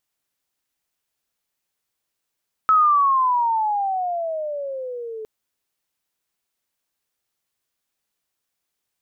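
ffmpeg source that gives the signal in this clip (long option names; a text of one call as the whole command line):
ffmpeg -f lavfi -i "aevalsrc='pow(10,(-11.5-18*t/2.56)/20)*sin(2*PI*1300*2.56/log(430/1300)*(exp(log(430/1300)*t/2.56)-1))':duration=2.56:sample_rate=44100" out.wav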